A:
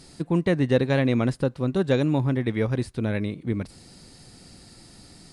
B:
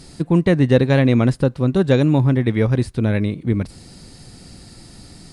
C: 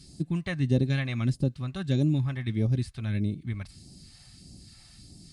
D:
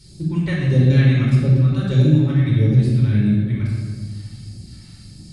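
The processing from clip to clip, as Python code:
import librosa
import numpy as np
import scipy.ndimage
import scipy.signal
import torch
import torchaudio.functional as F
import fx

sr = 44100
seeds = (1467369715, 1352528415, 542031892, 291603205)

y1 = fx.low_shelf(x, sr, hz=180.0, db=5.5)
y1 = F.gain(torch.from_numpy(y1), 5.0).numpy()
y2 = fx.notch_comb(y1, sr, f0_hz=480.0)
y2 = fx.phaser_stages(y2, sr, stages=2, low_hz=290.0, high_hz=1400.0, hz=1.6, feedback_pct=45)
y2 = F.gain(torch.from_numpy(y2), -8.0).numpy()
y3 = fx.room_shoebox(y2, sr, seeds[0], volume_m3=2000.0, walls='mixed', distance_m=4.6)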